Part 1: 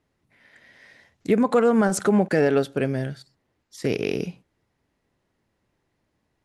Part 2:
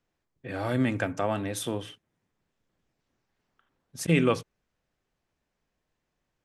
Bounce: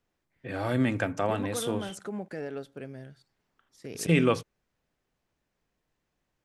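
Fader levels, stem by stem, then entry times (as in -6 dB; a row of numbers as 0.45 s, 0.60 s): -17.0 dB, 0.0 dB; 0.00 s, 0.00 s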